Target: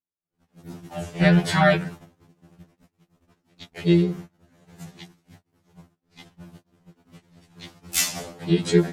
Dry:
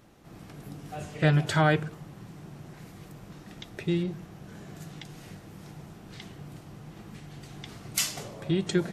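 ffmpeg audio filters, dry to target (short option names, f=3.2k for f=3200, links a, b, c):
-filter_complex "[0:a]agate=range=-52dB:threshold=-41dB:ratio=16:detection=peak,asplit=2[a][b];[b]asetrate=52444,aresample=44100,atempo=0.840896,volume=-4dB[c];[a][c]amix=inputs=2:normalize=0,afftfilt=real='re*2*eq(mod(b,4),0)':imag='im*2*eq(mod(b,4),0)':win_size=2048:overlap=0.75,volume=6dB"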